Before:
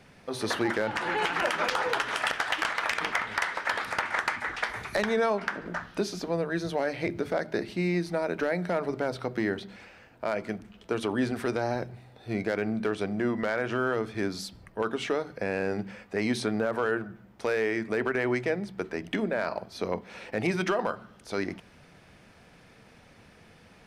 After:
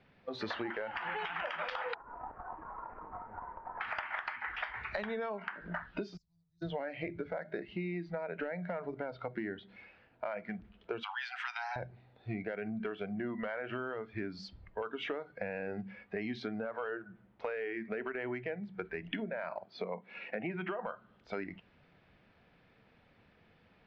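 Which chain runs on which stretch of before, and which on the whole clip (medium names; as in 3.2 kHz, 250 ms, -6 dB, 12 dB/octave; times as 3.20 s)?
1.94–3.81 s: CVSD coder 16 kbps + low-pass 1.1 kHz 24 dB/octave + compression 4:1, threshold -38 dBFS
6.17–6.62 s: inverse Chebyshev band-stop 270–3000 Hz, stop band 50 dB + tone controls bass -13 dB, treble -4 dB
11.03–11.76 s: steep high-pass 750 Hz 72 dB/octave + treble shelf 2.5 kHz +9.5 dB
19.64–20.86 s: low-pass that closes with the level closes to 2.8 kHz, closed at -27 dBFS + high-pass 130 Hz 24 dB/octave
whole clip: inverse Chebyshev low-pass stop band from 11 kHz, stop band 60 dB; spectral noise reduction 12 dB; compression, threshold -37 dBFS; trim +1.5 dB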